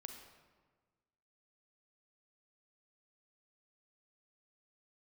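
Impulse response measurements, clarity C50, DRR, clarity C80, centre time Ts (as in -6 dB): 5.0 dB, 4.0 dB, 7.0 dB, 36 ms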